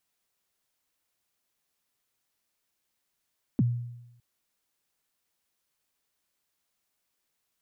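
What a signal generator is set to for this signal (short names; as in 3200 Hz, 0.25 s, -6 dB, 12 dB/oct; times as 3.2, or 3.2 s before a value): kick drum length 0.61 s, from 300 Hz, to 120 Hz, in 30 ms, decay 0.91 s, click off, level -18 dB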